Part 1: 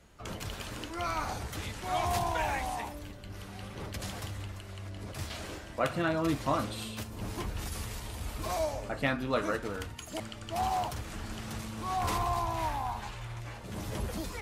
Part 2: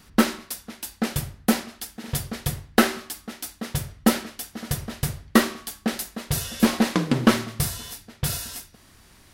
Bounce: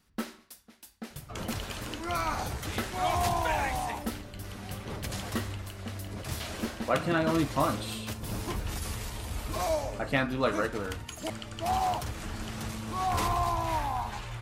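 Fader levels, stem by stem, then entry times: +2.5, −16.5 decibels; 1.10, 0.00 seconds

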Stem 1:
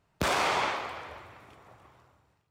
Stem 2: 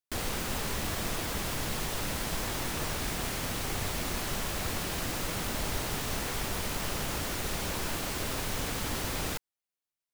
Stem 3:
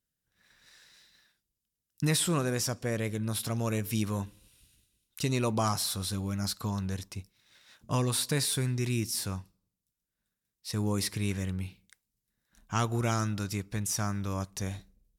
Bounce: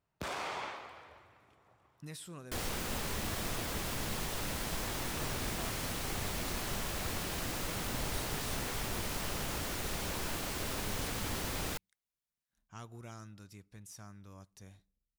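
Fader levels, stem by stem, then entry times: −12.0, −4.0, −19.5 decibels; 0.00, 2.40, 0.00 seconds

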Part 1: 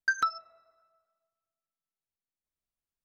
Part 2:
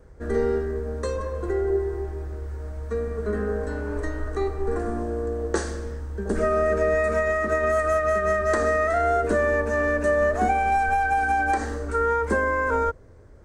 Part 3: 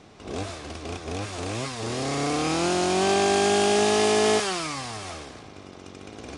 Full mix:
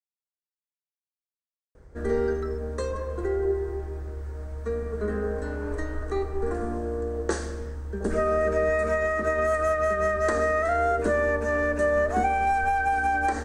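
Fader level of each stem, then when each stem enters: −17.0 dB, −2.0 dB, muted; 2.20 s, 1.75 s, muted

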